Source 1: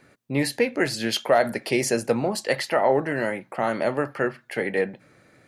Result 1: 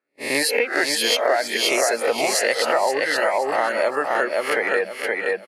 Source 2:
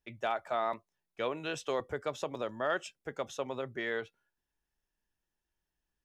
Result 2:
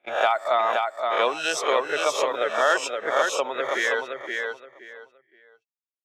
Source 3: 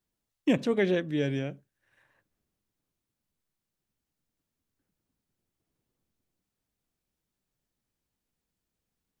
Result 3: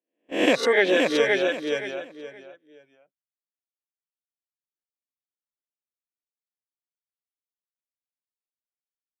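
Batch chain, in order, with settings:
reverse spectral sustain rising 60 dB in 0.61 s; high-pass 510 Hz 12 dB/octave; gate -43 dBFS, range -34 dB; reverb removal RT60 1.1 s; on a send: feedback delay 521 ms, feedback 25%, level -4.5 dB; on the sum: compression 4:1, threshold -27 dBFS; tape noise reduction on one side only decoder only; peak normalisation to -6 dBFS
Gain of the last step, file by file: +9.5 dB, +13.0 dB, +12.5 dB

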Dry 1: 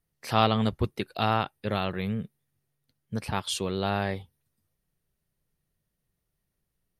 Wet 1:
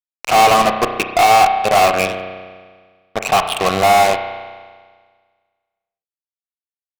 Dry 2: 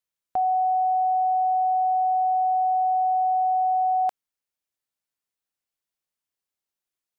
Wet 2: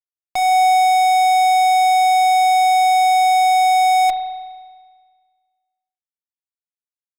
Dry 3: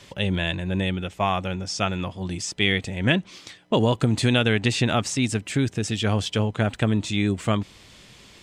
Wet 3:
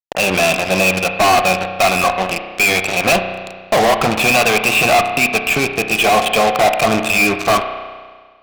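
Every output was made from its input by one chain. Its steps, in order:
gate with hold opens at -36 dBFS; vowel filter a; cabinet simulation 150–3800 Hz, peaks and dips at 160 Hz +10 dB, 270 Hz -4 dB, 1.1 kHz +3 dB, 2.4 kHz +6 dB; fuzz box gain 47 dB, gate -47 dBFS; spring tank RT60 1.6 s, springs 32 ms, chirp 65 ms, DRR 6.5 dB; normalise loudness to -14 LUFS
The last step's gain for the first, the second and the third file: +4.0 dB, -4.5 dB, +3.0 dB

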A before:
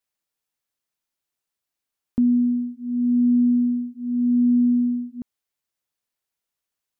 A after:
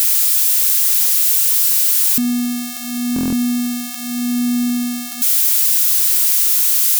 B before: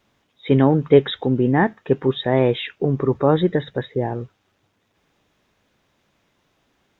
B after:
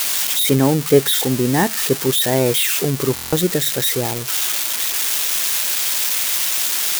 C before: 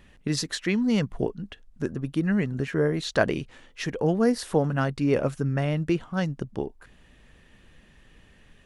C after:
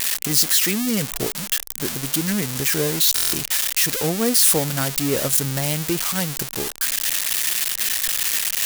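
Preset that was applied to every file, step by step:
zero-crossing glitches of -9 dBFS; buffer glitch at 3.14 s, samples 1024, times 7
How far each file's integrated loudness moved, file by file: +8.5 LU, +3.0 LU, +7.5 LU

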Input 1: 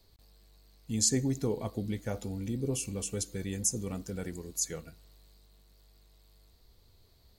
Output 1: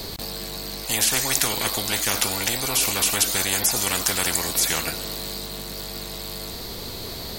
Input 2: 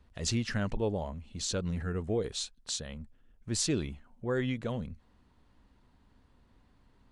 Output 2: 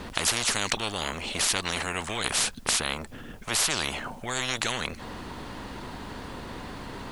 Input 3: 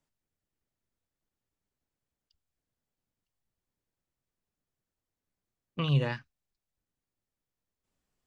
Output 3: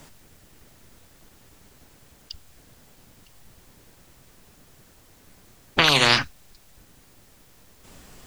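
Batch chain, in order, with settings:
spectrum-flattening compressor 10:1; peak normalisation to -1.5 dBFS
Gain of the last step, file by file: +11.5 dB, +13.5 dB, +14.0 dB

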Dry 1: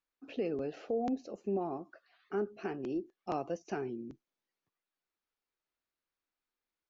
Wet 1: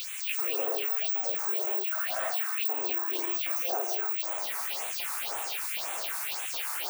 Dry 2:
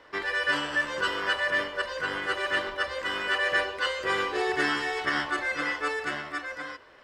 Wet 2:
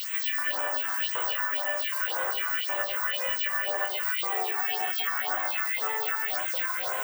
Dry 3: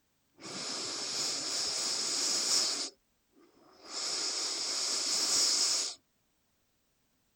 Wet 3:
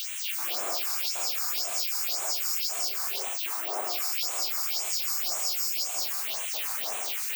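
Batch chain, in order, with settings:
jump at every zero crossing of -29 dBFS; careless resampling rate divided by 2×, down none, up zero stuff; LFO high-pass square 1.3 Hz 710–2600 Hz; de-hum 103.5 Hz, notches 3; on a send: feedback echo behind a high-pass 79 ms, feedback 52%, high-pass 3.1 kHz, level -23 dB; on the sum: gated-style reverb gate 320 ms rising, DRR 0 dB; phase shifter stages 4, 1.9 Hz, lowest notch 500–4800 Hz; short-mantissa float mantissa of 6-bit; compression, threshold -26 dBFS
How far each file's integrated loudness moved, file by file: +9.5 LU, +1.5 LU, +3.0 LU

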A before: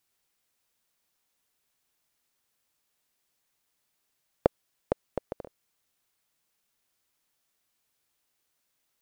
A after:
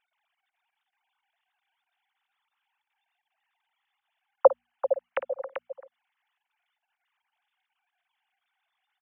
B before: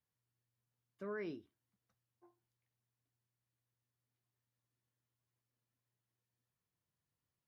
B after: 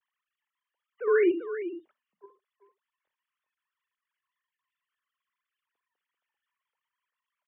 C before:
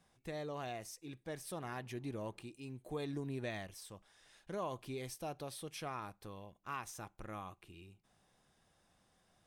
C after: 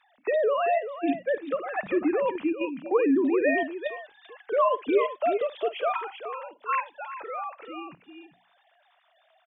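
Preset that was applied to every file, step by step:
formants replaced by sine waves; hum notches 60/120/180/240 Hz; multi-tap echo 54/389 ms -15.5/-8.5 dB; in parallel at +1 dB: level held to a coarse grid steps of 23 dB; on the sum: normalise loudness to -27 LUFS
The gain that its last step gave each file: +3.5 dB, +16.0 dB, +13.5 dB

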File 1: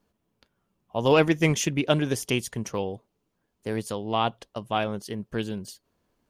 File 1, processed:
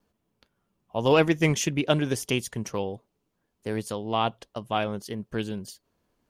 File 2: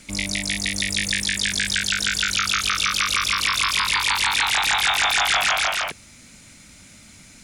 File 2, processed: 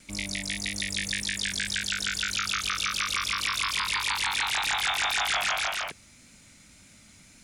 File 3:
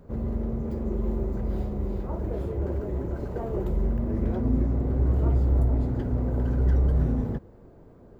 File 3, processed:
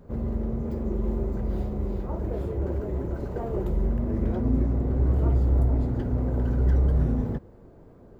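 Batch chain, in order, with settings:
vibrato 1.8 Hz 24 cents; normalise loudness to -27 LUFS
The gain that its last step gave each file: -0.5 dB, -7.0 dB, +0.5 dB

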